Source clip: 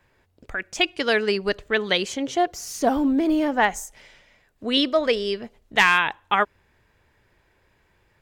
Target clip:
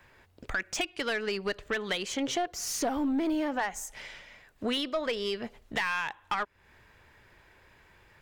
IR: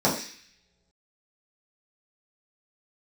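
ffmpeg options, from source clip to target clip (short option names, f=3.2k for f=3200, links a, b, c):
-filter_complex "[0:a]acrossover=split=860[a][b];[b]acontrast=33[c];[a][c]amix=inputs=2:normalize=0,aeval=exprs='1*(cos(1*acos(clip(val(0)/1,-1,1)))-cos(1*PI/2))+0.0355*(cos(8*acos(clip(val(0)/1,-1,1)))-cos(8*PI/2))':c=same,acompressor=threshold=-27dB:ratio=6,asoftclip=type=tanh:threshold=-23dB,equalizer=f=11k:t=o:w=2.5:g=-4,volume=2dB"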